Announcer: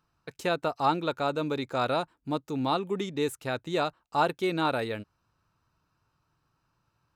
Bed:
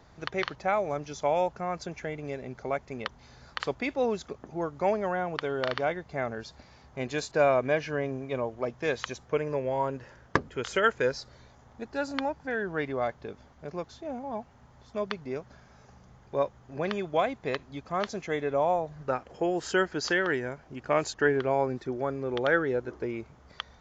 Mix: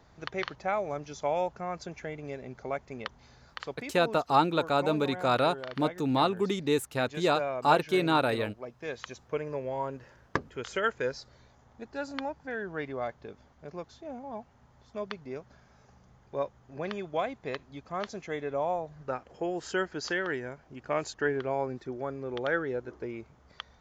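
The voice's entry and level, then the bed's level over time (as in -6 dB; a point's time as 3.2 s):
3.50 s, +2.0 dB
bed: 3.26 s -3 dB
3.95 s -10 dB
8.68 s -10 dB
9.3 s -4.5 dB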